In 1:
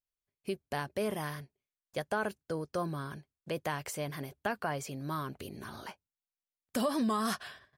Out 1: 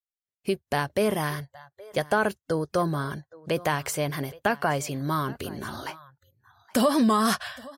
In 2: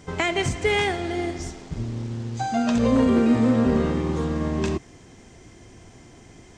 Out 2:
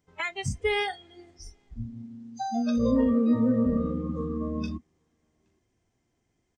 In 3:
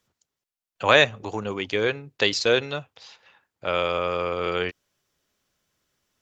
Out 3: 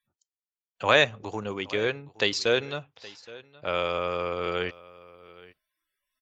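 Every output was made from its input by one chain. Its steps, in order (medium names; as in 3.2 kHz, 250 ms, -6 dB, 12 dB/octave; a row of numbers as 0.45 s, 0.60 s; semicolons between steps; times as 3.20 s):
delay 820 ms -20.5 dB; spectral noise reduction 24 dB; normalise loudness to -27 LUFS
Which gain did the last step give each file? +9.5 dB, -3.5 dB, -3.5 dB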